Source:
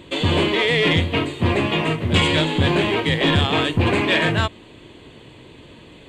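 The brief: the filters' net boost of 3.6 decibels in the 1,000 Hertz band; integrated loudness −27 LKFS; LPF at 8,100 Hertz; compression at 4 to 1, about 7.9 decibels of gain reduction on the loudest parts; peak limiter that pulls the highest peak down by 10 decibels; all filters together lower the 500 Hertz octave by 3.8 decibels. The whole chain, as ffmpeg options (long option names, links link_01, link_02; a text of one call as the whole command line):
ffmpeg -i in.wav -af "lowpass=8100,equalizer=frequency=500:width_type=o:gain=-6.5,equalizer=frequency=1000:width_type=o:gain=6,acompressor=threshold=-23dB:ratio=4,volume=3.5dB,alimiter=limit=-18.5dB:level=0:latency=1" out.wav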